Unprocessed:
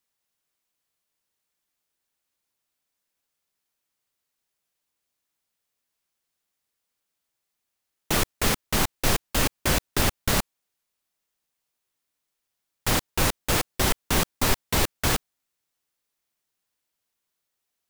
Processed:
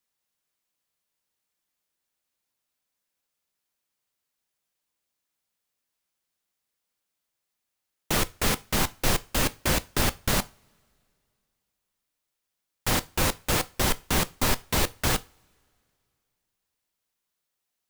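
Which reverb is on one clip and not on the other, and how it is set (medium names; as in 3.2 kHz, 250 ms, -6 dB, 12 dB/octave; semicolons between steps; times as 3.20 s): two-slope reverb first 0.29 s, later 2.6 s, from -28 dB, DRR 13.5 dB; trim -1.5 dB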